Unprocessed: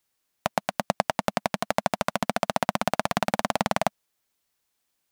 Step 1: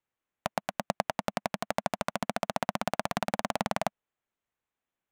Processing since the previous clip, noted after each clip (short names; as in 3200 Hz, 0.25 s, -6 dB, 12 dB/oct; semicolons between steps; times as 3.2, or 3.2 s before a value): Wiener smoothing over 9 samples; gain -5.5 dB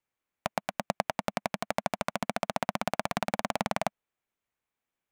bell 2300 Hz +3.5 dB 0.2 oct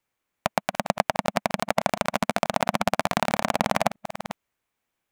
reverse delay 0.36 s, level -11 dB; gain +7 dB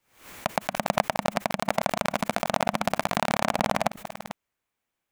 backwards sustainer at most 120 dB/s; gain -2.5 dB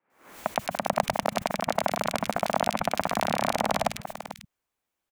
three bands offset in time mids, highs, lows 0.1/0.13 s, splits 160/2100 Hz